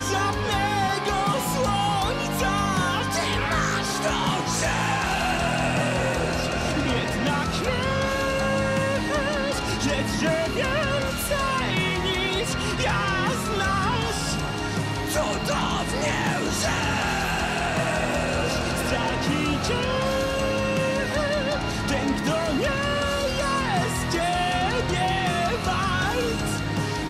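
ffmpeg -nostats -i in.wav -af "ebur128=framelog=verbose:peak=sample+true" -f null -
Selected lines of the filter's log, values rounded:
Integrated loudness:
  I:         -24.0 LUFS
  Threshold: -34.0 LUFS
Loudness range:
  LRA:         1.0 LU
  Threshold: -44.0 LUFS
  LRA low:   -24.5 LUFS
  LRA high:  -23.5 LUFS
Sample peak:
  Peak:      -11.7 dBFS
True peak:
  Peak:      -11.7 dBFS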